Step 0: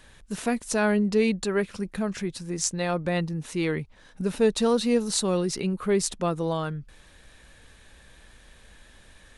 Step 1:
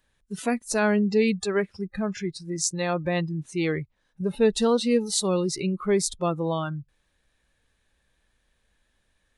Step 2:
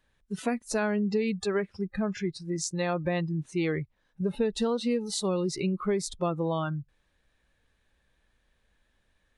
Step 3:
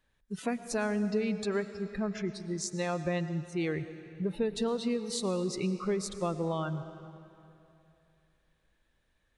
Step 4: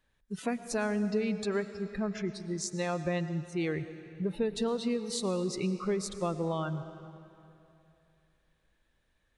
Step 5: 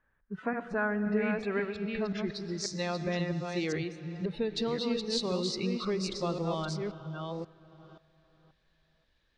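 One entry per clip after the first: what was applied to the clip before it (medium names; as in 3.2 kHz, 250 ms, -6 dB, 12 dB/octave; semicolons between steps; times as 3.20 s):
spectral noise reduction 19 dB; trim +1 dB
compression 12:1, threshold -23 dBFS, peak gain reduction 9 dB; treble shelf 5.8 kHz -9 dB
reverberation RT60 2.8 s, pre-delay 70 ms, DRR 11.5 dB; trim -3.5 dB
no audible change
chunks repeated in reverse 532 ms, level -4.5 dB; low-pass sweep 1.5 kHz -> 4.7 kHz, 0.87–2.44 s; trim -1.5 dB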